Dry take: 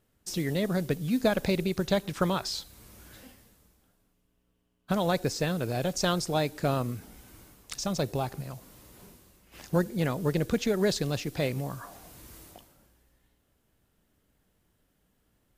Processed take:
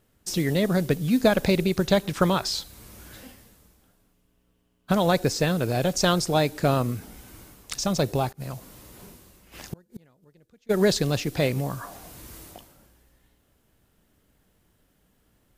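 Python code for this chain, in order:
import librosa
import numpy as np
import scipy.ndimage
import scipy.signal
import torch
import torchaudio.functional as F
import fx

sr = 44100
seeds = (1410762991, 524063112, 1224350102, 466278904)

y = fx.gate_flip(x, sr, shuts_db=-26.0, range_db=-36, at=(8.31, 10.69), fade=0.02)
y = y * librosa.db_to_amplitude(5.5)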